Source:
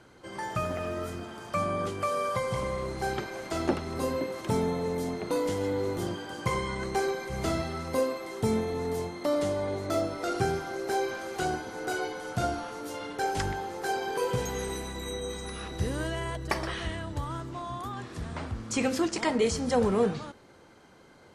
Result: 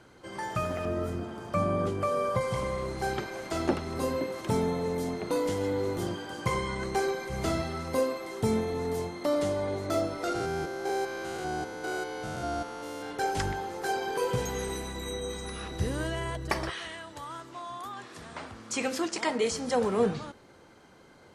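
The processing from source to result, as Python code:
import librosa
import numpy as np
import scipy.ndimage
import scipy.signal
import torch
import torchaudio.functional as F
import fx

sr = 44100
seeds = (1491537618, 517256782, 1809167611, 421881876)

y = fx.tilt_shelf(x, sr, db=5.0, hz=970.0, at=(0.85, 2.41))
y = fx.spec_steps(y, sr, hold_ms=200, at=(10.34, 13.1), fade=0.02)
y = fx.highpass(y, sr, hz=fx.line((16.69, 1000.0), (19.97, 280.0)), slope=6, at=(16.69, 19.97), fade=0.02)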